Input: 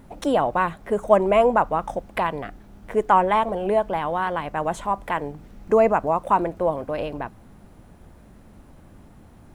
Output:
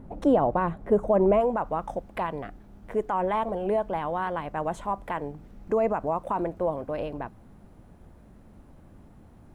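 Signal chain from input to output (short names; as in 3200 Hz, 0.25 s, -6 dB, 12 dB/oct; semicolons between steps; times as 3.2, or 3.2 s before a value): limiter -13 dBFS, peak gain reduction 9.5 dB; tilt shelf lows +9.5 dB, about 1400 Hz, from 1.39 s lows +3 dB; gain -6 dB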